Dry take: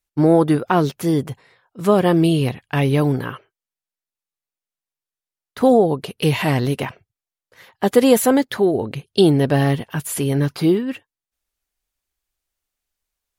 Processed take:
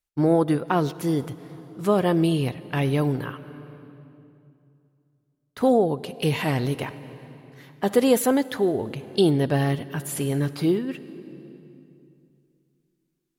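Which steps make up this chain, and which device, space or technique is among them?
compressed reverb return (on a send at -9 dB: reverb RT60 2.5 s, pre-delay 42 ms + compressor 6:1, threshold -21 dBFS, peak gain reduction 12.5 dB); on the sum: gain -5.5 dB

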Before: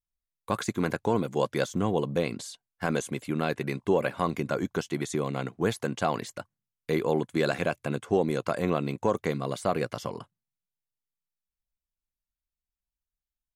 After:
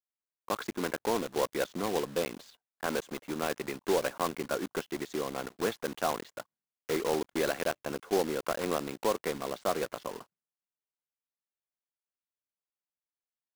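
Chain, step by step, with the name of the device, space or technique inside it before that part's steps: Wiener smoothing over 9 samples; early digital voice recorder (BPF 290–3900 Hz; block floating point 3-bit); bell 2300 Hz -2 dB; gain -2.5 dB

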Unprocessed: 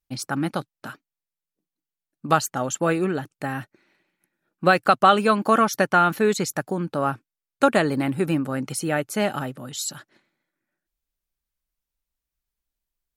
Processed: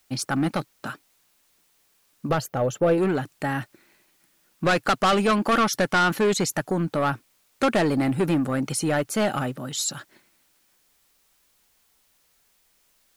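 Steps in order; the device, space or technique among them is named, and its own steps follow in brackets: compact cassette (soft clip -19.5 dBFS, distortion -7 dB; LPF 12000 Hz; wow and flutter; white noise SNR 39 dB); 2.29–2.98 graphic EQ 125/250/500/1000/2000/4000/8000 Hz +4/-5/+7/-5/-5/-4/-12 dB; gain +3.5 dB

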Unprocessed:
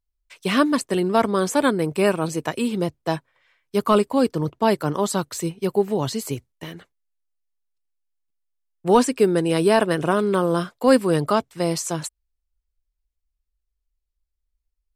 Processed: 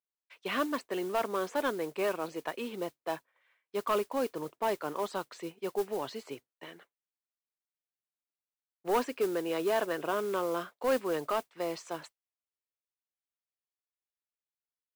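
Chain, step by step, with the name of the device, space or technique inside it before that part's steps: carbon microphone (BPF 400–3100 Hz; soft clip -13.5 dBFS, distortion -15 dB; modulation noise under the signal 19 dB); gain -7.5 dB

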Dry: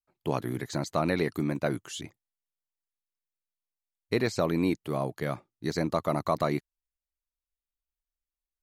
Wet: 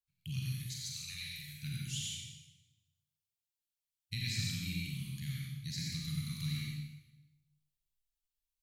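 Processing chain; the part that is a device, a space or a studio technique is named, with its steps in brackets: Chebyshev band-stop 140–2800 Hz, order 3; 0.52–1.62 passive tone stack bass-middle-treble 10-0-10; bathroom (reverb RT60 1.0 s, pre-delay 75 ms, DRR -2 dB); Schroeder reverb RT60 0.44 s, combs from 31 ms, DRR 2 dB; gain -3 dB

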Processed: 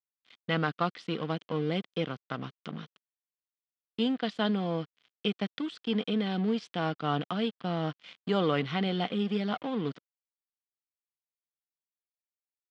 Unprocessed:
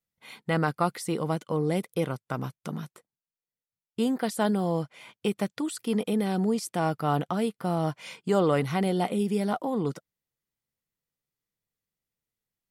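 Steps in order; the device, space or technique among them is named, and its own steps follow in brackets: blown loudspeaker (crossover distortion -41.5 dBFS; speaker cabinet 150–4500 Hz, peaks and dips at 370 Hz -5 dB, 580 Hz -5 dB, 890 Hz -7 dB, 3200 Hz +8 dB)

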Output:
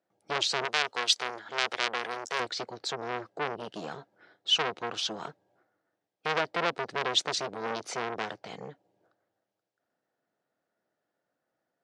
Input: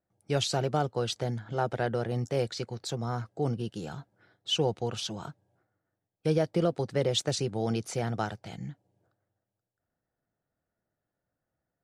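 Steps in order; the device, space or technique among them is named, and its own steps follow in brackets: public-address speaker with an overloaded transformer (core saturation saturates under 2400 Hz; BPF 290–5300 Hz); 0.65–2.4 tilt +3.5 dB/oct; gain +5.5 dB

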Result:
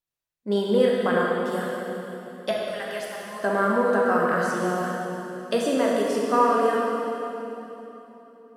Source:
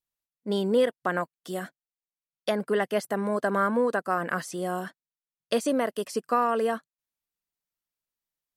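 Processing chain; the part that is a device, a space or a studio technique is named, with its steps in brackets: 2.51–3.4 passive tone stack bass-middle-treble 10-0-10; swimming-pool hall (reverb RT60 3.4 s, pre-delay 9 ms, DRR -3.5 dB; high shelf 5700 Hz -5 dB)

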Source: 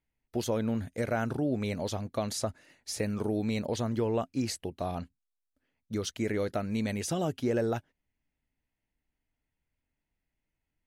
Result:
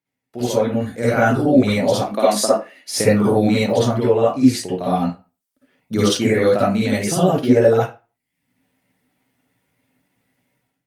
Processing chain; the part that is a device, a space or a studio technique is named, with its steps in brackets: 1.95–2.96 HPF 220 Hz 24 dB/oct; reverb removal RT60 0.59 s; far-field microphone of a smart speaker (reverb RT60 0.30 s, pre-delay 49 ms, DRR -8 dB; HPF 120 Hz 24 dB/oct; AGC gain up to 16 dB; gain -1 dB; Opus 48 kbps 48000 Hz)

